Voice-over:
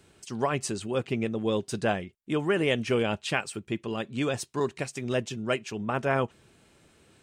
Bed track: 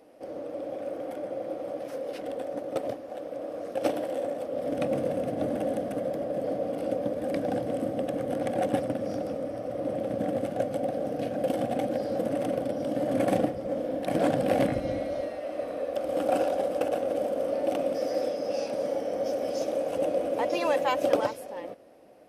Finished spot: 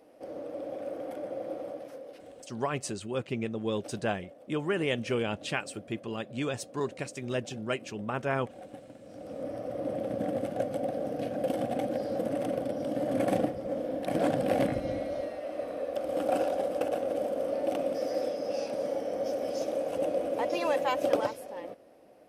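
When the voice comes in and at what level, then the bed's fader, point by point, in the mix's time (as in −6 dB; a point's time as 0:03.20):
2.20 s, −4.0 dB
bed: 0:01.60 −2.5 dB
0:02.55 −19.5 dB
0:09.03 −19.5 dB
0:09.46 −2.5 dB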